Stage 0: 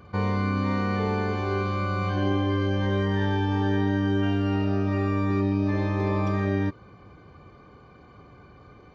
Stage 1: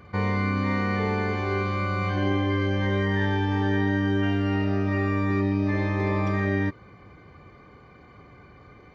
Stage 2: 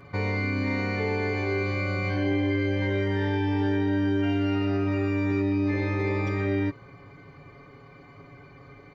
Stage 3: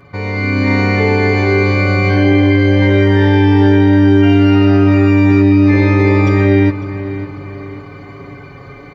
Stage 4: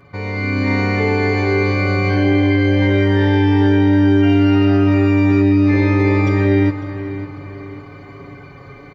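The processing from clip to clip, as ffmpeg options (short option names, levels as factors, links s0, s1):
-af "equalizer=f=2000:w=5.1:g=11.5"
-filter_complex "[0:a]aecho=1:1:7.2:0.79,asplit=2[s0][s1];[s1]alimiter=limit=0.106:level=0:latency=1,volume=1.41[s2];[s0][s2]amix=inputs=2:normalize=0,volume=0.376"
-filter_complex "[0:a]asplit=2[s0][s1];[s1]adelay=551,lowpass=f=3500:p=1,volume=0.211,asplit=2[s2][s3];[s3]adelay=551,lowpass=f=3500:p=1,volume=0.46,asplit=2[s4][s5];[s5]adelay=551,lowpass=f=3500:p=1,volume=0.46,asplit=2[s6][s7];[s7]adelay=551,lowpass=f=3500:p=1,volume=0.46[s8];[s2][s4][s6][s8]amix=inputs=4:normalize=0[s9];[s0][s9]amix=inputs=2:normalize=0,dynaudnorm=f=170:g=5:m=2.82,volume=1.78"
-af "aecho=1:1:385:0.158,volume=0.631"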